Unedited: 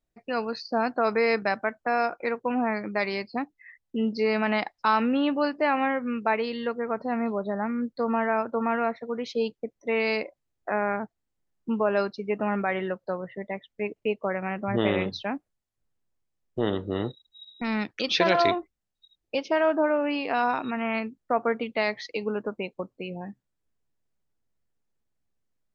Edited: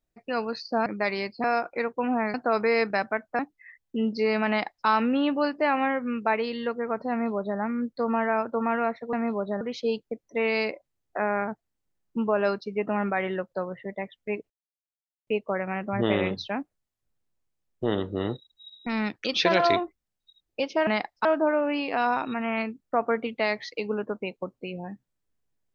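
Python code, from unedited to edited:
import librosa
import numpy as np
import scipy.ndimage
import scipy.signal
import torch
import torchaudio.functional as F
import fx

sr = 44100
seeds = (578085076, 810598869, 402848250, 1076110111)

y = fx.edit(x, sr, fx.swap(start_s=0.86, length_s=1.05, other_s=2.81, other_length_s=0.58),
    fx.duplicate(start_s=4.49, length_s=0.38, to_s=19.62),
    fx.duplicate(start_s=7.11, length_s=0.48, to_s=9.13),
    fx.insert_silence(at_s=14.02, length_s=0.77), tone=tone)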